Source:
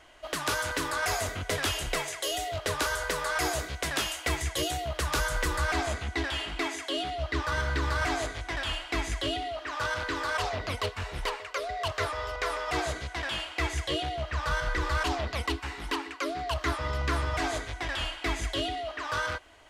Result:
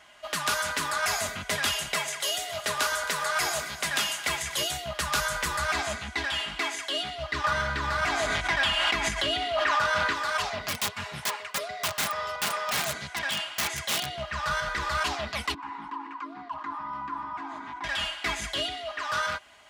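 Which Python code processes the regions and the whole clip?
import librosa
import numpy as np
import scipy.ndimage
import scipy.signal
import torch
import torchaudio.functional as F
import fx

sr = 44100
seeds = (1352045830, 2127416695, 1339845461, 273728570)

y = fx.chain(x, sr, fx.low_shelf(hz=79.0, db=-10.5),
    fx.echo_split(split_hz=760.0, low_ms=111, high_ms=269, feedback_pct=52, wet_db=-14.5), at=(1.77, 4.66))
y = fx.chain(y, sr, fx.high_shelf(hz=4300.0, db=-6.5),
    fx.env_flatten(amount_pct=100), at=(7.44, 10.13))
y = fx.chain(y, sr, fx.highpass(hz=98.0, slope=24),
    fx.low_shelf(hz=170.0, db=6.5),
    fx.overflow_wrap(gain_db=23.5), at=(10.68, 14.15))
y = fx.chain(y, sr, fx.double_bandpass(hz=530.0, octaves=1.7),
    fx.env_flatten(amount_pct=70), at=(15.54, 17.84))
y = scipy.signal.sosfilt(scipy.signal.butter(2, 110.0, 'highpass', fs=sr, output='sos'), y)
y = fx.peak_eq(y, sr, hz=400.0, db=-11.5, octaves=1.0)
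y = y + 0.5 * np.pad(y, (int(4.9 * sr / 1000.0), 0))[:len(y)]
y = y * librosa.db_to_amplitude(2.5)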